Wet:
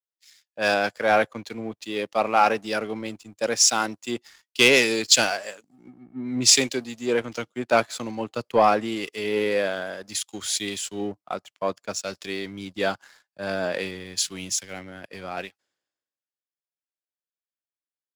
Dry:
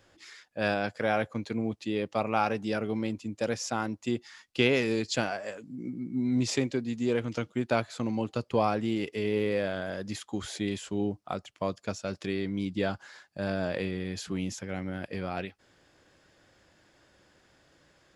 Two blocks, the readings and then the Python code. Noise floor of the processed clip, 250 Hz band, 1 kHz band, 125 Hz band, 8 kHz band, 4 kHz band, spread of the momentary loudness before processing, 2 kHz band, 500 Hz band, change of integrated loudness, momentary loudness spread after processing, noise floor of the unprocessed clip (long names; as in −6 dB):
below −85 dBFS, −0.5 dB, +8.5 dB, −5.0 dB, +18.5 dB, +13.5 dB, 9 LU, +9.0 dB, +5.5 dB, +8.0 dB, 17 LU, −65 dBFS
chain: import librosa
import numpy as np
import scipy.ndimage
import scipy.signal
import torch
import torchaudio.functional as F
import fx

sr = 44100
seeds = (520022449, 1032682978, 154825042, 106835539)

y = fx.highpass(x, sr, hz=500.0, slope=6)
y = fx.high_shelf(y, sr, hz=5800.0, db=6.5)
y = fx.leveller(y, sr, passes=2)
y = fx.band_widen(y, sr, depth_pct=100)